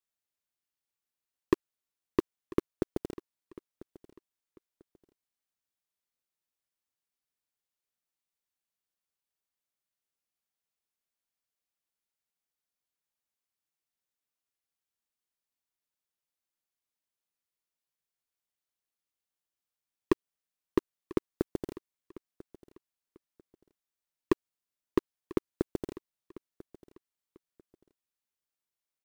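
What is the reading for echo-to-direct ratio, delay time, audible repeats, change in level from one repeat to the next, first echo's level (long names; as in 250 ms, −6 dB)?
−19.0 dB, 994 ms, 2, −11.5 dB, −19.5 dB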